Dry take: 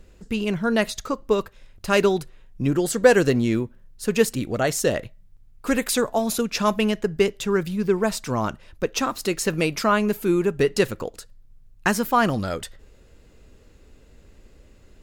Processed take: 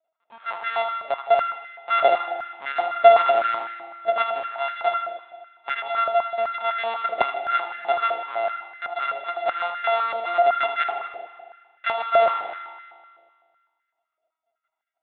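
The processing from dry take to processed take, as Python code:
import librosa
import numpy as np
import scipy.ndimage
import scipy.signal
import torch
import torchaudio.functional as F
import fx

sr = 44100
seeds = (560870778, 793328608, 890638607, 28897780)

p1 = np.r_[np.sort(x[:len(x) // 64 * 64].reshape(-1, 64), axis=1).ravel(), x[len(x) // 64 * 64:]]
p2 = fx.noise_reduce_blind(p1, sr, reduce_db=21)
p3 = fx.lpc_vocoder(p2, sr, seeds[0], excitation='pitch_kept', order=16)
p4 = p3 + fx.echo_feedback(p3, sr, ms=79, feedback_pct=57, wet_db=-9.0, dry=0)
p5 = fx.rev_spring(p4, sr, rt60_s=1.8, pass_ms=(38,), chirp_ms=35, drr_db=8.0)
p6 = fx.filter_held_highpass(p5, sr, hz=7.9, low_hz=620.0, high_hz=1600.0)
y = p6 * librosa.db_to_amplitude(-6.0)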